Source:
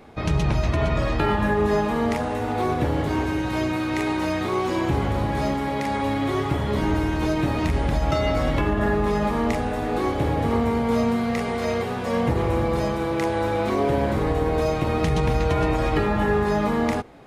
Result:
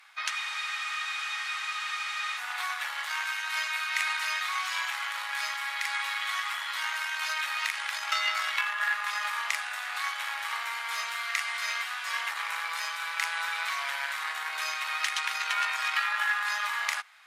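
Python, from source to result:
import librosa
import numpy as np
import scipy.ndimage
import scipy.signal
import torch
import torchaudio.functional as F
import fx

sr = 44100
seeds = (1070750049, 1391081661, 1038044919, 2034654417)

y = fx.cheby_harmonics(x, sr, harmonics=(4, 7), levels_db=(-22, -30), full_scale_db=-9.5)
y = scipy.signal.sosfilt(scipy.signal.cheby2(4, 60, 390.0, 'highpass', fs=sr, output='sos'), y)
y = fx.spec_freeze(y, sr, seeds[0], at_s=0.33, hold_s=2.05)
y = y * librosa.db_to_amplitude(4.5)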